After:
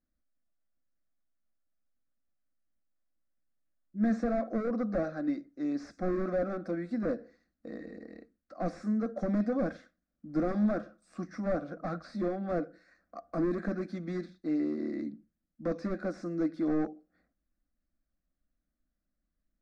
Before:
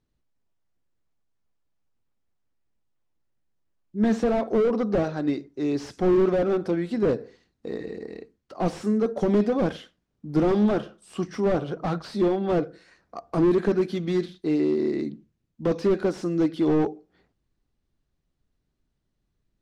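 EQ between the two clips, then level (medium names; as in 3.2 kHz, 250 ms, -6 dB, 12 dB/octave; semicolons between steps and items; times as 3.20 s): low-pass 5.1 kHz 12 dB/octave; static phaser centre 610 Hz, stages 8; -5.0 dB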